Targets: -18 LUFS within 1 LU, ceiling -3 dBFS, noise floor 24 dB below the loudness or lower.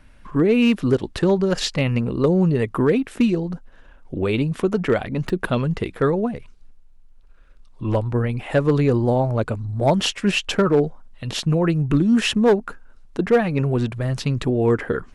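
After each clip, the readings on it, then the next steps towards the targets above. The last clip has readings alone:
clipped samples 0.6%; clipping level -9.5 dBFS; dropouts 1; longest dropout 4.9 ms; loudness -20.5 LUFS; peak level -9.5 dBFS; loudness target -18.0 LUFS
-> clip repair -9.5 dBFS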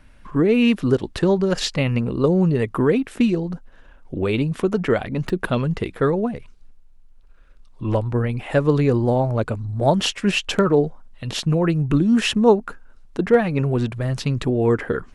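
clipped samples 0.0%; dropouts 1; longest dropout 4.9 ms
-> interpolate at 5.29 s, 4.9 ms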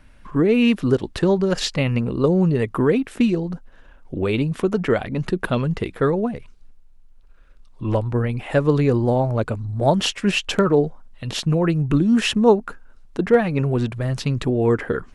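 dropouts 0; loudness -20.5 LUFS; peak level -3.0 dBFS; loudness target -18.0 LUFS
-> trim +2.5 dB; peak limiter -3 dBFS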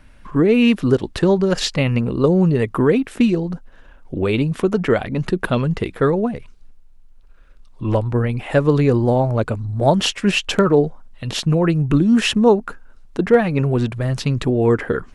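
loudness -18.0 LUFS; peak level -3.0 dBFS; noise floor -45 dBFS

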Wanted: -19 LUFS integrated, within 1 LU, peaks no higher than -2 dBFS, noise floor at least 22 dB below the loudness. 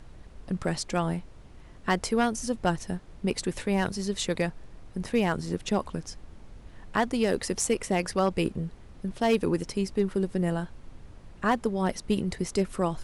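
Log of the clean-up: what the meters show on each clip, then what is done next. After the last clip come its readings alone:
clipped samples 0.3%; clipping level -15.5 dBFS; noise floor -49 dBFS; noise floor target -51 dBFS; loudness -29.0 LUFS; peak level -15.5 dBFS; loudness target -19.0 LUFS
-> clip repair -15.5 dBFS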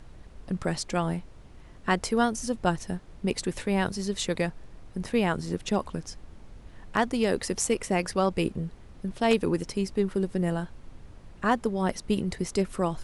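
clipped samples 0.0%; noise floor -49 dBFS; noise floor target -51 dBFS
-> noise print and reduce 6 dB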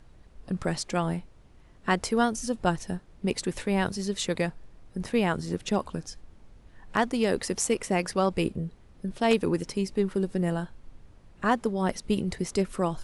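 noise floor -54 dBFS; loudness -28.5 LUFS; peak level -8.5 dBFS; loudness target -19.0 LUFS
-> trim +9.5 dB; peak limiter -2 dBFS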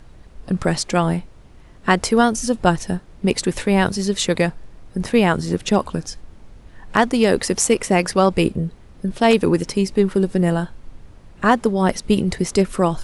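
loudness -19.5 LUFS; peak level -2.0 dBFS; noise floor -45 dBFS

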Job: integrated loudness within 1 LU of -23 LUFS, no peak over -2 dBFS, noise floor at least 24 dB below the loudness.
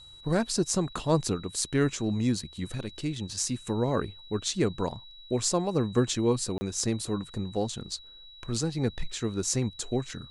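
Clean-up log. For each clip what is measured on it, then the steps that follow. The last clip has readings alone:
dropouts 1; longest dropout 30 ms; steady tone 3.9 kHz; tone level -48 dBFS; loudness -29.5 LUFS; peak level -11.0 dBFS; loudness target -23.0 LUFS
-> interpolate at 6.58 s, 30 ms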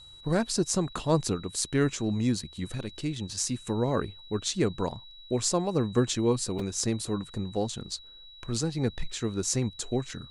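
dropouts 0; steady tone 3.9 kHz; tone level -48 dBFS
-> band-stop 3.9 kHz, Q 30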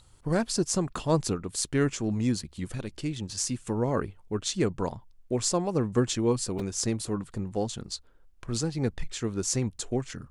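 steady tone not found; loudness -29.5 LUFS; peak level -11.0 dBFS; loudness target -23.0 LUFS
-> trim +6.5 dB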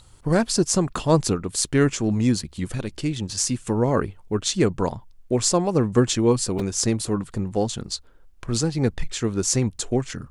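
loudness -23.0 LUFS; peak level -4.5 dBFS; noise floor -50 dBFS

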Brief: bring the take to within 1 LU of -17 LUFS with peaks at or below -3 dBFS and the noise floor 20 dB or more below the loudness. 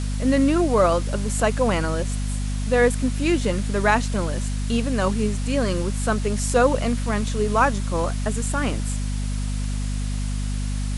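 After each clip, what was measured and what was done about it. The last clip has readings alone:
hum 50 Hz; highest harmonic 250 Hz; hum level -23 dBFS; noise floor -25 dBFS; noise floor target -43 dBFS; loudness -23.0 LUFS; peak level -4.5 dBFS; loudness target -17.0 LUFS
-> hum notches 50/100/150/200/250 Hz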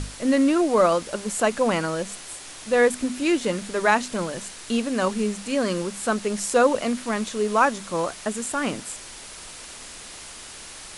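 hum not found; noise floor -41 dBFS; noise floor target -44 dBFS
-> noise reduction 6 dB, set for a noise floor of -41 dBFS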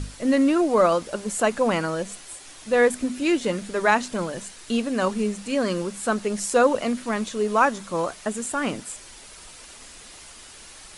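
noise floor -45 dBFS; loudness -23.5 LUFS; peak level -5.5 dBFS; loudness target -17.0 LUFS
-> trim +6.5 dB; peak limiter -3 dBFS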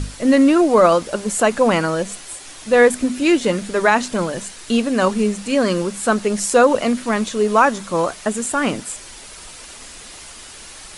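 loudness -17.5 LUFS; peak level -3.0 dBFS; noise floor -38 dBFS

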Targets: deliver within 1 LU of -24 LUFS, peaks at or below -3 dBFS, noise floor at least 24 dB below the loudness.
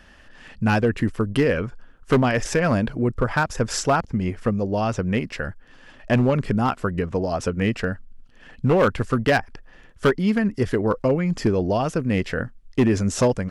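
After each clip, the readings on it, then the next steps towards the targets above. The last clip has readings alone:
clipped samples 1.0%; clipping level -12.0 dBFS; loudness -22.5 LUFS; peak level -12.0 dBFS; loudness target -24.0 LUFS
-> clip repair -12 dBFS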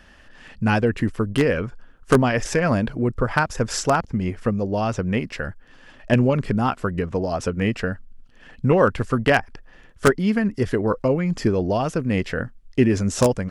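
clipped samples 0.0%; loudness -22.0 LUFS; peak level -3.0 dBFS; loudness target -24.0 LUFS
-> trim -2 dB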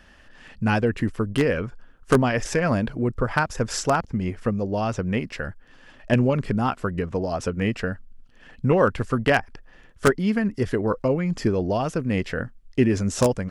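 loudness -24.0 LUFS; peak level -5.0 dBFS; noise floor -51 dBFS

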